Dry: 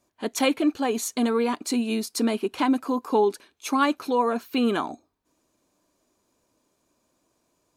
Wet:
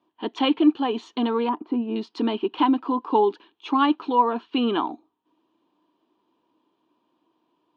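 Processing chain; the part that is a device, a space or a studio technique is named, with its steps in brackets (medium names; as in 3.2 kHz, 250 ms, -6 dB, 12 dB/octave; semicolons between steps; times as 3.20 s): kitchen radio (cabinet simulation 200–3400 Hz, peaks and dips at 320 Hz +8 dB, 580 Hz -8 dB, 940 Hz +8 dB, 1.5 kHz -4 dB, 2.2 kHz -8 dB, 3.1 kHz +8 dB); 1.49–1.96 s: low-pass 1.2 kHz 12 dB/octave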